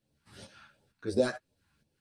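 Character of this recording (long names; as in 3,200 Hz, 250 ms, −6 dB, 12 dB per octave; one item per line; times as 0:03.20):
phaser sweep stages 2, 2.8 Hz, lowest notch 440–1,400 Hz
tremolo saw up 2.2 Hz, depth 65%
a shimmering, thickened sound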